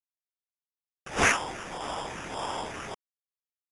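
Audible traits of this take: a quantiser's noise floor 8-bit, dither none; phasing stages 12, 1.7 Hz, lowest notch 790–4300 Hz; aliases and images of a low sample rate 4200 Hz, jitter 0%; AAC

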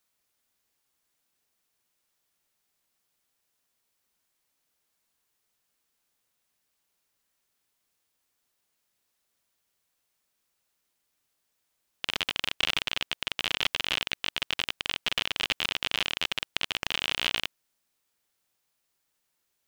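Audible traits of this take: noise floor -78 dBFS; spectral tilt -0.5 dB/oct

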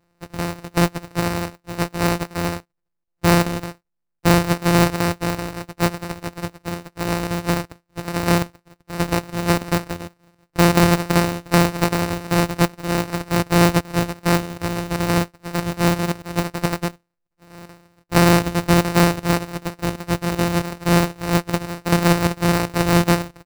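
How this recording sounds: a buzz of ramps at a fixed pitch in blocks of 256 samples; chopped level 2.6 Hz, depth 65%, duty 90%; aliases and images of a low sample rate 3300 Hz, jitter 0%

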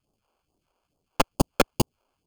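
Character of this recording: aliases and images of a low sample rate 1900 Hz, jitter 0%; phasing stages 2, 2.3 Hz, lowest notch 100–1900 Hz

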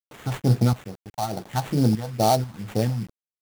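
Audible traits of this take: random-step tremolo 4.1 Hz, depth 75%; a quantiser's noise floor 8-bit, dither none; phasing stages 4, 2.3 Hz, lowest notch 360–3100 Hz; aliases and images of a low sample rate 5100 Hz, jitter 20%

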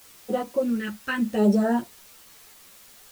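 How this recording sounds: phasing stages 2, 0.77 Hz, lowest notch 590–2300 Hz; a quantiser's noise floor 8-bit, dither triangular; a shimmering, thickened sound

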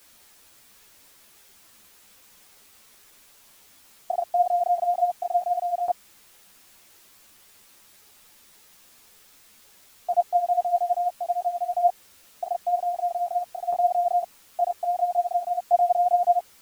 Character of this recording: tremolo saw down 0.51 Hz, depth 60%; a quantiser's noise floor 10-bit, dither triangular; a shimmering, thickened sound

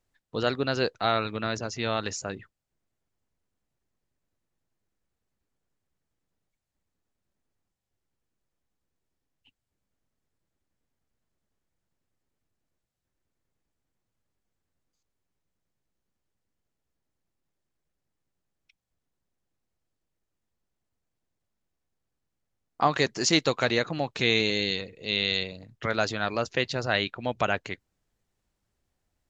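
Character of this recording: noise floor -83 dBFS; spectral tilt -3.5 dB/oct

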